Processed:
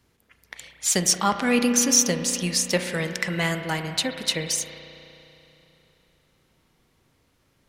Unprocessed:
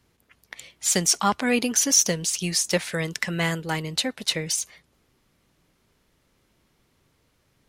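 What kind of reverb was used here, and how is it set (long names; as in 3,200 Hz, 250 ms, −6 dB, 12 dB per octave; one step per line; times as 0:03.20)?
spring reverb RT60 3.2 s, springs 33 ms, chirp 35 ms, DRR 6.5 dB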